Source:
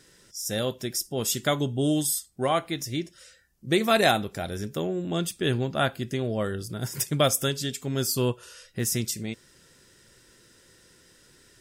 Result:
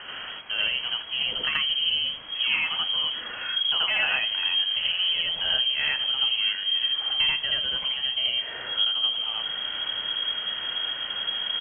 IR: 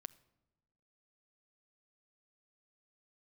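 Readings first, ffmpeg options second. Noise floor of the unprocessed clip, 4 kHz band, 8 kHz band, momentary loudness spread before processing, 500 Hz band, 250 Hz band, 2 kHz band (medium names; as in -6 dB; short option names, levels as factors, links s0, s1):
-58 dBFS, +13.5 dB, under -40 dB, 11 LU, -17.5 dB, under -20 dB, +6.0 dB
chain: -filter_complex "[0:a]aeval=exprs='val(0)+0.5*0.0224*sgn(val(0))':c=same,asubboost=boost=8.5:cutoff=82,asplit=2[s0][s1];[s1]adelay=874.6,volume=0.0794,highshelf=f=4000:g=-19.7[s2];[s0][s2]amix=inputs=2:normalize=0,lowpass=f=2800:t=q:w=0.5098,lowpass=f=2800:t=q:w=0.6013,lowpass=f=2800:t=q:w=0.9,lowpass=f=2800:t=q:w=2.563,afreqshift=-3300,acompressor=threshold=0.0398:ratio=4,asplit=2[s3][s4];[1:a]atrim=start_sample=2205,adelay=82[s5];[s4][s5]afir=irnorm=-1:irlink=0,volume=2.37[s6];[s3][s6]amix=inputs=2:normalize=0,volume=1.19"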